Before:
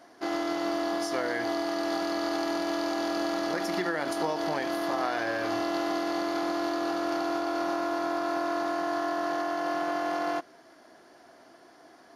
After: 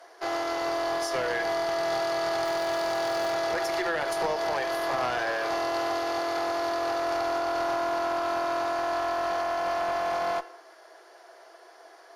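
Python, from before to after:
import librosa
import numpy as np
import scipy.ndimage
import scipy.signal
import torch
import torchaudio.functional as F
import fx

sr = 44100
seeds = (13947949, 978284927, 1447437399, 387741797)

y = scipy.signal.sosfilt(scipy.signal.ellip(4, 1.0, 50, 390.0, 'highpass', fs=sr, output='sos'), x)
y = fx.room_shoebox(y, sr, seeds[0], volume_m3=3400.0, walls='furnished', distance_m=0.7)
y = fx.cheby_harmonics(y, sr, harmonics=(2, 5), levels_db=(-10, -19), full_scale_db=-17.0)
y = fx.dmg_crackle(y, sr, seeds[1], per_s=390.0, level_db=-35.0, at=(2.44, 3.3), fade=0.02)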